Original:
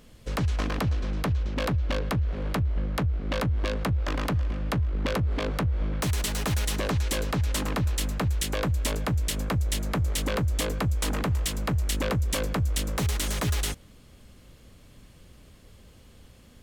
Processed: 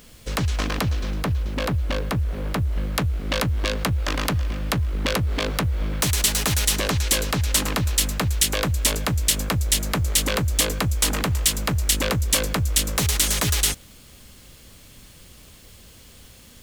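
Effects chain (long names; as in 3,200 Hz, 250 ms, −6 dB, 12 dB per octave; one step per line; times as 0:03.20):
high-shelf EQ 2,300 Hz +8 dB, from 0:01.14 +2 dB, from 0:02.72 +10.5 dB
bit reduction 9 bits
level +2.5 dB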